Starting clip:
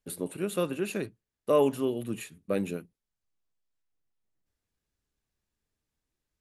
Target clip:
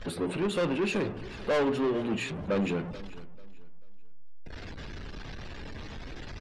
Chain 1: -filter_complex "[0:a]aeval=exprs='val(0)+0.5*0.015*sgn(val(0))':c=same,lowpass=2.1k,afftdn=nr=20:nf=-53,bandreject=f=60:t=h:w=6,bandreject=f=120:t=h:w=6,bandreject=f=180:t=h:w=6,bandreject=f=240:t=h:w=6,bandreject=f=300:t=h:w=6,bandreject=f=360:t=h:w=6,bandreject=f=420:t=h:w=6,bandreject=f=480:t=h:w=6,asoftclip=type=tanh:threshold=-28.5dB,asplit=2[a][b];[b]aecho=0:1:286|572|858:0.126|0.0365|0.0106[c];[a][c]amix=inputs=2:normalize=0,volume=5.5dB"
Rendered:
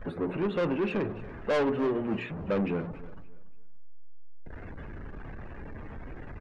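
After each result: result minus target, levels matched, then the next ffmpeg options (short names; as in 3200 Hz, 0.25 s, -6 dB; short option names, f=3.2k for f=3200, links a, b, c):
echo 0.153 s early; 4000 Hz band -6.5 dB
-filter_complex "[0:a]aeval=exprs='val(0)+0.5*0.015*sgn(val(0))':c=same,lowpass=2.1k,afftdn=nr=20:nf=-53,bandreject=f=60:t=h:w=6,bandreject=f=120:t=h:w=6,bandreject=f=180:t=h:w=6,bandreject=f=240:t=h:w=6,bandreject=f=300:t=h:w=6,bandreject=f=360:t=h:w=6,bandreject=f=420:t=h:w=6,bandreject=f=480:t=h:w=6,asoftclip=type=tanh:threshold=-28.5dB,asplit=2[a][b];[b]aecho=0:1:439|878|1317:0.126|0.0365|0.0106[c];[a][c]amix=inputs=2:normalize=0,volume=5.5dB"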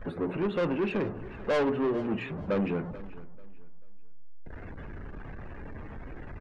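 4000 Hz band -6.5 dB
-filter_complex "[0:a]aeval=exprs='val(0)+0.5*0.015*sgn(val(0))':c=same,lowpass=5k,afftdn=nr=20:nf=-53,bandreject=f=60:t=h:w=6,bandreject=f=120:t=h:w=6,bandreject=f=180:t=h:w=6,bandreject=f=240:t=h:w=6,bandreject=f=300:t=h:w=6,bandreject=f=360:t=h:w=6,bandreject=f=420:t=h:w=6,bandreject=f=480:t=h:w=6,asoftclip=type=tanh:threshold=-28.5dB,asplit=2[a][b];[b]aecho=0:1:439|878|1317:0.126|0.0365|0.0106[c];[a][c]amix=inputs=2:normalize=0,volume=5.5dB"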